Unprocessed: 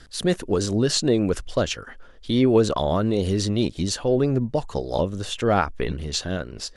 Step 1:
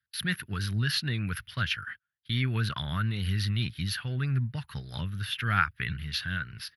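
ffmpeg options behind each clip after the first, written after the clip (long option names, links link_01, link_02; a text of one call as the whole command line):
ffmpeg -i in.wav -af "highpass=frequency=88:width=0.5412,highpass=frequency=88:width=1.3066,agate=range=-35dB:threshold=-44dB:ratio=16:detection=peak,firequalizer=gain_entry='entry(120,0);entry(290,-21);entry(530,-29);entry(1500,5);entry(5100,-8);entry(7500,-29);entry(11000,7)':delay=0.05:min_phase=1" out.wav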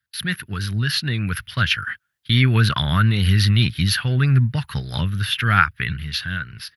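ffmpeg -i in.wav -af "dynaudnorm=framelen=240:gausssize=13:maxgain=7dB,volume=5.5dB" out.wav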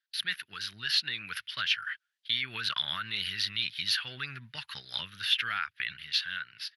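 ffmpeg -i in.wav -af "alimiter=limit=-11.5dB:level=0:latency=1:release=118,bandpass=frequency=3600:width_type=q:width=0.97:csg=0,volume=-2dB" out.wav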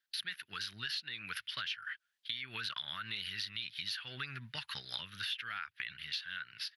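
ffmpeg -i in.wav -af "acompressor=threshold=-38dB:ratio=6,volume=1dB" out.wav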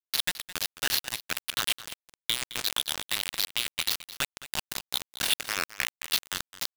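ffmpeg -i in.wav -filter_complex "[0:a]asplit=2[link_01][link_02];[link_02]asoftclip=type=hard:threshold=-37dB,volume=-4dB[link_03];[link_01][link_03]amix=inputs=2:normalize=0,acrusher=bits=4:mix=0:aa=0.000001,aecho=1:1:214:0.168,volume=8.5dB" out.wav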